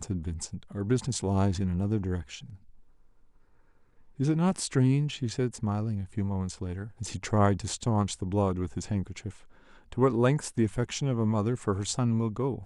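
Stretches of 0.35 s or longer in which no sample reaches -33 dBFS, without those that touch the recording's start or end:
2.36–4.2
9.3–9.92

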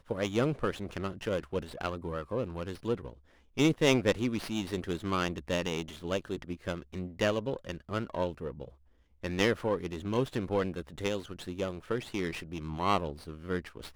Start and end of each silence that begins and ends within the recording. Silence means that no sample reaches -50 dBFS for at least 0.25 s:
3.18–3.57
8.73–9.23

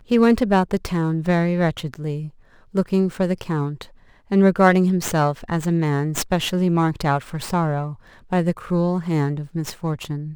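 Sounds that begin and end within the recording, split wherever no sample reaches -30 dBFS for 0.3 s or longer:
2.75–3.83
4.31–7.93

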